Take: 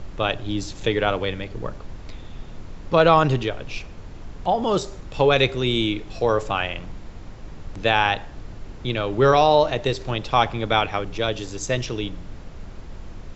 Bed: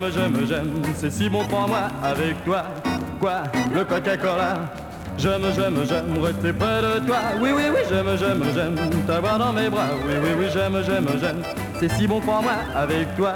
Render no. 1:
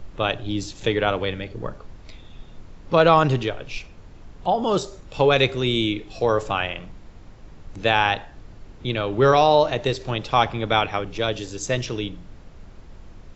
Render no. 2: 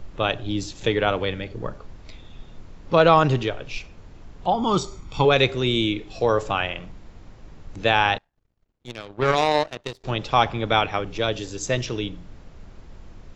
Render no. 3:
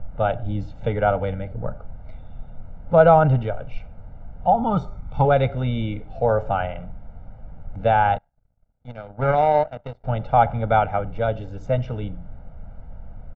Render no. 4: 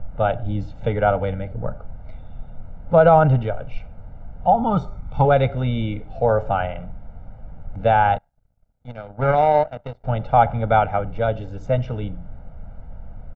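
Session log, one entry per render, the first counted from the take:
noise reduction from a noise print 6 dB
0:04.52–0:05.25: comb filter 0.9 ms, depth 64%; 0:08.18–0:10.04: power curve on the samples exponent 2
low-pass filter 1,100 Hz 12 dB per octave; comb filter 1.4 ms, depth 99%
level +1.5 dB; brickwall limiter −3 dBFS, peak gain reduction 2.5 dB

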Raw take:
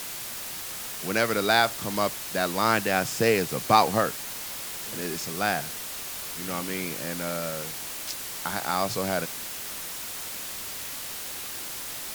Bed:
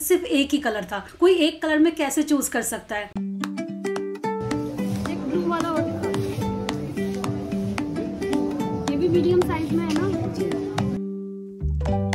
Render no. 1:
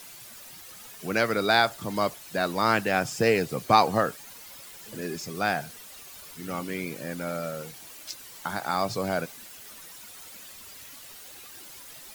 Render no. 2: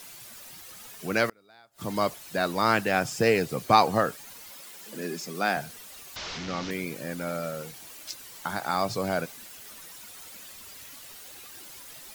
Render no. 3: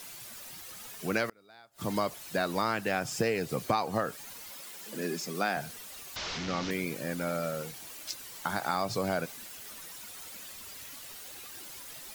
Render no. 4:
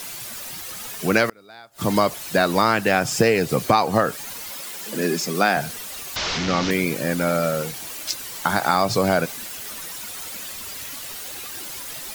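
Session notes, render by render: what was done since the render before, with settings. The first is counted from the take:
broadband denoise 12 dB, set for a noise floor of −36 dBFS
0:01.26–0:01.93: gate with flip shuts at −18 dBFS, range −34 dB; 0:04.51–0:05.57: Butterworth high-pass 160 Hz; 0:06.16–0:06.71: linear delta modulator 32 kbit/s, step −29.5 dBFS
downward compressor 6 to 1, threshold −25 dBFS, peak gain reduction 12 dB
level +11.5 dB; brickwall limiter −3 dBFS, peak gain reduction 1 dB

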